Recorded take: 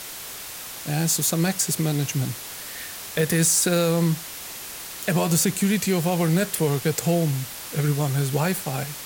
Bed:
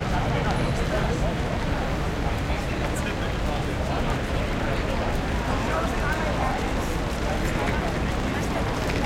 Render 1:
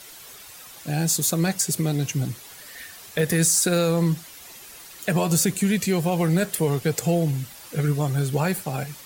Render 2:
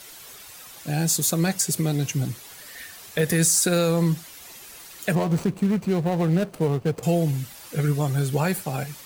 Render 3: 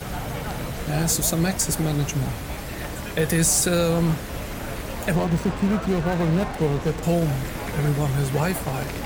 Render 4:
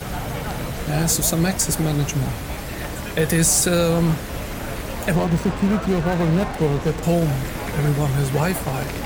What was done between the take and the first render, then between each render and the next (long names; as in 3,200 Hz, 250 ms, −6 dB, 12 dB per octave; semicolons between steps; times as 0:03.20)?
broadband denoise 10 dB, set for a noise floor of −37 dBFS
0:05.15–0:07.03: running median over 25 samples
mix in bed −6 dB
level +2.5 dB